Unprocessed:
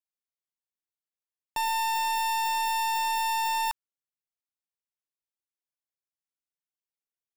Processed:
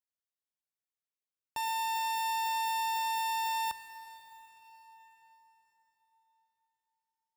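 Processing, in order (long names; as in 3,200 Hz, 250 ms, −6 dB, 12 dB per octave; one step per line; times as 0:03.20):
gain on one half-wave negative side −7 dB
high-pass filter 56 Hz
dense smooth reverb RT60 4.9 s, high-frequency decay 0.8×, DRR 10 dB
level −3.5 dB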